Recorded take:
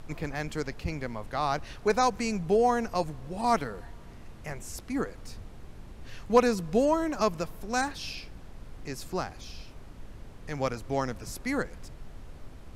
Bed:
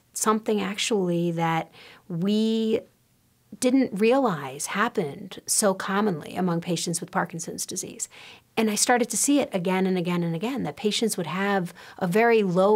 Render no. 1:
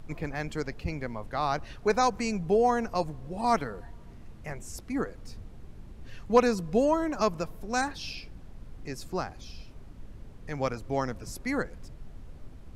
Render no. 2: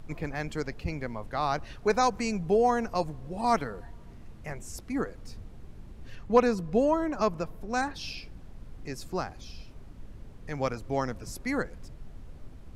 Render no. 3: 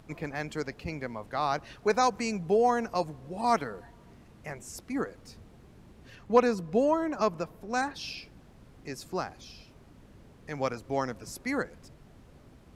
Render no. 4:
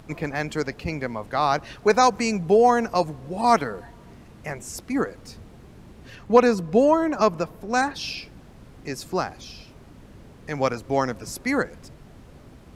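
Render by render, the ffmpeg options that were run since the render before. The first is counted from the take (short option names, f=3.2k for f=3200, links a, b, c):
-af "afftdn=nr=6:nf=-47"
-filter_complex "[0:a]asettb=1/sr,asplit=3[a][b][c];[a]atrim=end=6.154[d];[b]atrim=start=6.15:end=7.96,asetpts=PTS-STARTPTS,afade=t=in:d=0.004:c=qsin,afade=t=out:st=1.806:d=0.004:c=qsin,highshelf=f=3.6k:g=-7[e];[c]atrim=start=7.956[f];[d][e]acrossfade=d=0.004:c1=hsin:c2=qsin[g];[g][f]acrossfade=d=0.004:c1=qsin:c2=hsin"
-af "highpass=f=160:p=1"
-af "volume=7.5dB,alimiter=limit=-3dB:level=0:latency=1"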